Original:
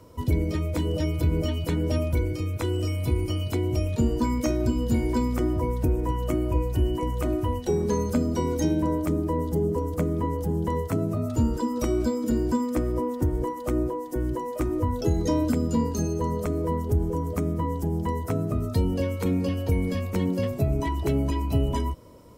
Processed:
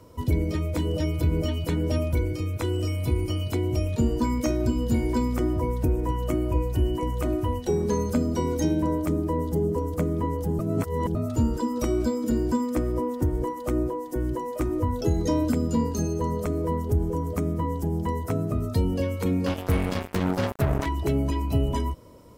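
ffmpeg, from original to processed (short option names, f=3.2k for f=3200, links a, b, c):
-filter_complex "[0:a]asettb=1/sr,asplit=3[a][b][c];[a]atrim=end=19.464[d];[b]atrim=start=19.46:end=20.86,asetpts=PTS-STARTPTS,afade=t=in:d=0.004:c=qsin,afade=t=out:st=1.396:d=0.004:c=qsin,acrusher=bits=3:mix=0:aa=0.5[e];[c]atrim=start=20.856[f];[d][e]acrossfade=d=0.004:c1=hsin:c2=qsin[g];[g][f]acrossfade=d=0.004:c1=qsin:c2=hsin,asplit=3[h][i][j];[h]atrim=end=10.592[k];[i]atrim=start=10.588:end=11.152,asetpts=PTS-STARTPTS,areverse[l];[j]atrim=start=11.148[m];[k][l]acrossfade=d=0.004:c1=hsin:c2=hsin[n];[n][m]acrossfade=d=0.004:c1=hsin:c2=hsin"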